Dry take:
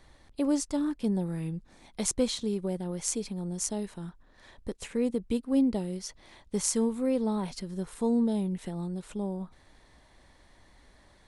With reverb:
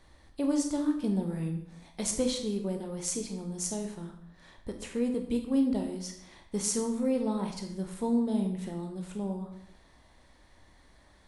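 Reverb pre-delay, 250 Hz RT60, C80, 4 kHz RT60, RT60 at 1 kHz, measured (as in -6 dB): 17 ms, 0.75 s, 10.0 dB, 0.60 s, 0.65 s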